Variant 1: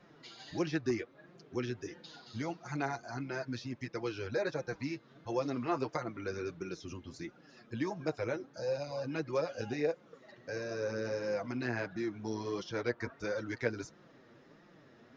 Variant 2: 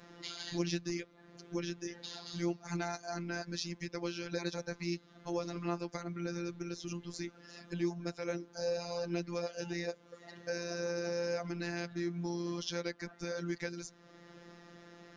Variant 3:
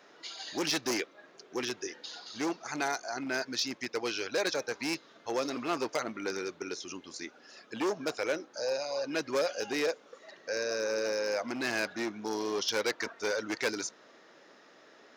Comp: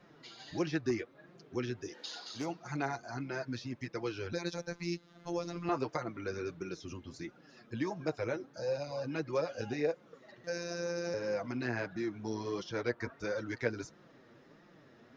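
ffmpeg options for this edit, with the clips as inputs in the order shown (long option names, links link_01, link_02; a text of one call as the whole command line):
ffmpeg -i take0.wav -i take1.wav -i take2.wav -filter_complex "[1:a]asplit=2[link_01][link_02];[0:a]asplit=4[link_03][link_04][link_05][link_06];[link_03]atrim=end=2[link_07];[2:a]atrim=start=1.84:end=2.48[link_08];[link_04]atrim=start=2.32:end=4.332[link_09];[link_01]atrim=start=4.328:end=5.692[link_10];[link_05]atrim=start=5.688:end=10.442[link_11];[link_02]atrim=start=10.438:end=11.142[link_12];[link_06]atrim=start=11.138[link_13];[link_07][link_08]acrossfade=duration=0.16:curve1=tri:curve2=tri[link_14];[link_14][link_09]acrossfade=duration=0.16:curve1=tri:curve2=tri[link_15];[link_15][link_10]acrossfade=duration=0.004:curve1=hsin:curve2=hsin[link_16];[link_16][link_11]acrossfade=duration=0.004:curve1=hsin:curve2=hsin[link_17];[link_17][link_12]acrossfade=duration=0.004:curve1=hsin:curve2=hsin[link_18];[link_18][link_13]acrossfade=duration=0.004:curve1=hsin:curve2=hsin" out.wav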